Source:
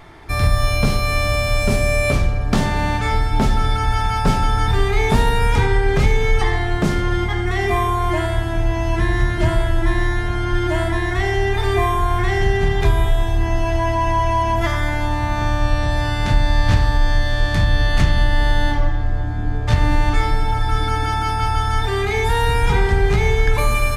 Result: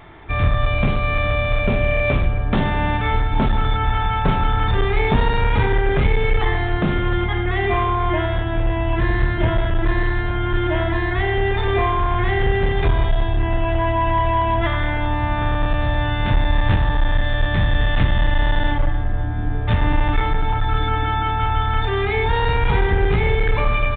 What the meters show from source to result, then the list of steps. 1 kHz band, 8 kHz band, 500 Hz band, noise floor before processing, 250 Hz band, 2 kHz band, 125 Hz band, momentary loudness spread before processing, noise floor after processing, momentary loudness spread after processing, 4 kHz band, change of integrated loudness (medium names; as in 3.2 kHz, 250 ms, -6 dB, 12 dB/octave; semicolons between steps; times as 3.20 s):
-0.5 dB, under -40 dB, -0.5 dB, -21 dBFS, -0.5 dB, -0.5 dB, -1.0 dB, 4 LU, -21 dBFS, 3 LU, -2.5 dB, -1.0 dB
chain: one-sided clip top -14 dBFS; resampled via 8 kHz